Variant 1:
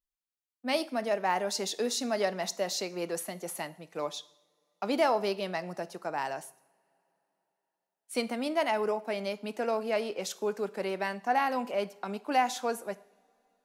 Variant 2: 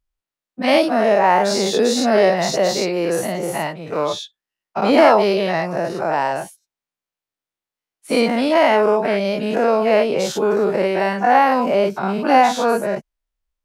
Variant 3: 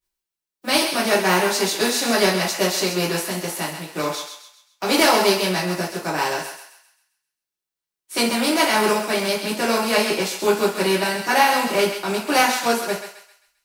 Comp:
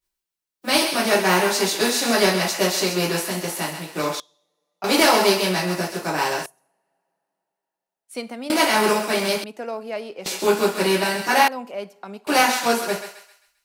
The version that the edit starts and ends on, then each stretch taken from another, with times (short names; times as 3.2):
3
4.2–4.84 from 1
6.46–8.5 from 1
9.44–10.26 from 1
11.48–12.27 from 1
not used: 2